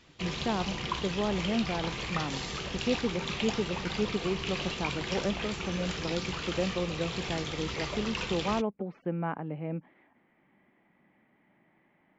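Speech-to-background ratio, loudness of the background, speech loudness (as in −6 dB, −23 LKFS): 0.5 dB, −35.0 LKFS, −34.5 LKFS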